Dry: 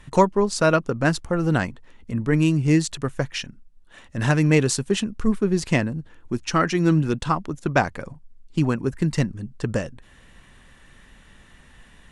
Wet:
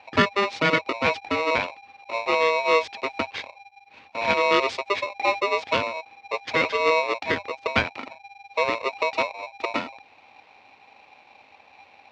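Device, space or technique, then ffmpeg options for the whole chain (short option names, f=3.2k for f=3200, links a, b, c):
ring modulator pedal into a guitar cabinet: -af "aeval=exprs='val(0)*sgn(sin(2*PI*800*n/s))':c=same,highpass=88,equalizer=f=92:t=q:w=4:g=7,equalizer=f=160:t=q:w=4:g=-4,equalizer=f=260:t=q:w=4:g=5,equalizer=f=480:t=q:w=4:g=5,equalizer=f=2.3k:t=q:w=4:g=7,lowpass=f=4.5k:w=0.5412,lowpass=f=4.5k:w=1.3066,volume=-4.5dB"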